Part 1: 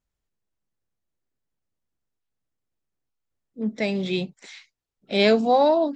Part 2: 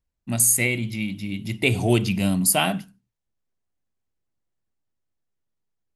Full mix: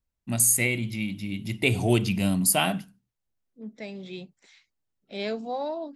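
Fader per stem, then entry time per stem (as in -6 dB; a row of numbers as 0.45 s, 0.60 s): -13.0 dB, -2.5 dB; 0.00 s, 0.00 s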